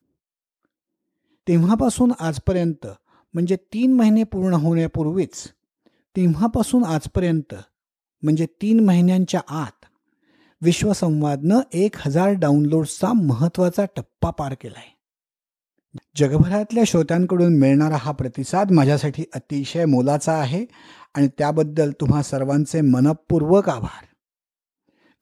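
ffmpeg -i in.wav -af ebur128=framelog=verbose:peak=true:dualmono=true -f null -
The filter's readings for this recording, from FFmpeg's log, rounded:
Integrated loudness:
  I:         -16.5 LUFS
  Threshold: -27.3 LUFS
Loudness range:
  LRA:         3.9 LU
  Threshold: -37.5 LUFS
  LRA low:   -19.6 LUFS
  LRA high:  -15.7 LUFS
True peak:
  Peak:       -2.4 dBFS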